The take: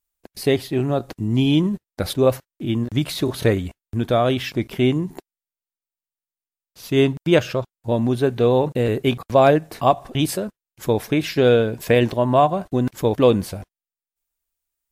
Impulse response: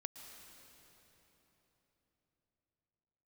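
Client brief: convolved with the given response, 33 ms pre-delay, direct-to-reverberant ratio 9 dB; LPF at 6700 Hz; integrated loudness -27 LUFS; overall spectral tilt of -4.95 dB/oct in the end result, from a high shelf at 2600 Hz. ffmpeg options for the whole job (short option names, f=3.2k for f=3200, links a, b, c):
-filter_complex "[0:a]lowpass=6.7k,highshelf=f=2.6k:g=7,asplit=2[a][b];[1:a]atrim=start_sample=2205,adelay=33[c];[b][c]afir=irnorm=-1:irlink=0,volume=-5.5dB[d];[a][d]amix=inputs=2:normalize=0,volume=-8dB"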